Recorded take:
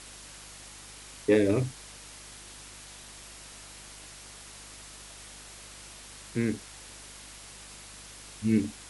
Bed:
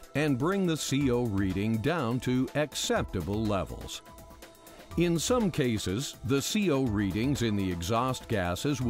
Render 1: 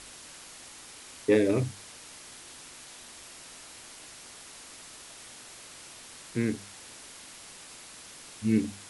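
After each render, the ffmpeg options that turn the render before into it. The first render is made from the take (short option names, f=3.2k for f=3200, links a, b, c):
-af "bandreject=f=50:t=h:w=4,bandreject=f=100:t=h:w=4,bandreject=f=150:t=h:w=4,bandreject=f=200:t=h:w=4"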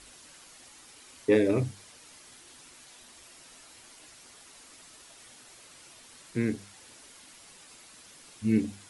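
-af "afftdn=nr=7:nf=-48"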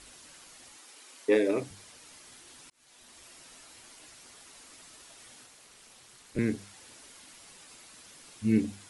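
-filter_complex "[0:a]asettb=1/sr,asplit=3[a][b][c];[a]atrim=end=0.774[d];[b]atrim=start=0.77:end=1.71,asetpts=PTS-STARTPTS,afade=t=in:d=0.004:c=qsin,afade=t=out:st=0.936:d=0.004:c=qsin,highpass=310[e];[c]atrim=start=1.706[f];[d][e]acrossfade=d=0.004:c1=hsin:c2=qsin[g];[g][f]acrossfade=d=0.004:c1=qsin:c2=hsin,asettb=1/sr,asplit=3[h][i][j];[h]atrim=end=5.464[k];[i]atrim=start=5.46:end=6.39,asetpts=PTS-STARTPTS,afade=t=in:d=0.004:c=qsin,afade=t=out:st=0.926:d=0.004:c=qsin,aeval=exprs='val(0)*sin(2*PI*120*n/s)':c=same[l];[j]atrim=start=6.386[m];[k][l]acrossfade=d=0.004:c1=hsin:c2=qsin[n];[n][m]acrossfade=d=0.004:c1=qsin:c2=hsin,asplit=2[o][p];[o]atrim=end=2.7,asetpts=PTS-STARTPTS,afade=t=out:st=2.696:d=0.004:c=hsin[q];[p]atrim=start=2.7,asetpts=PTS-STARTPTS,afade=t=in:d=0.66:c=qsin[r];[q][r]concat=n=2:v=0:a=1"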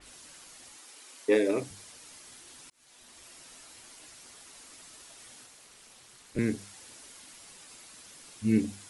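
-af "adynamicequalizer=threshold=0.002:dfrequency=4600:dqfactor=0.7:tfrequency=4600:tqfactor=0.7:attack=5:release=100:ratio=0.375:range=2:mode=boostabove:tftype=highshelf"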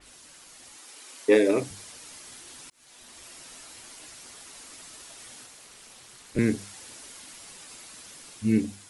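-af "dynaudnorm=f=220:g=7:m=5dB"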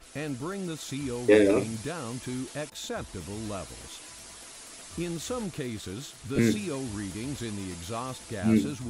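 -filter_complex "[1:a]volume=-7dB[a];[0:a][a]amix=inputs=2:normalize=0"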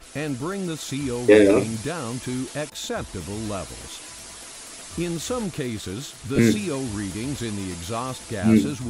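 -af "volume=6dB,alimiter=limit=-3dB:level=0:latency=1"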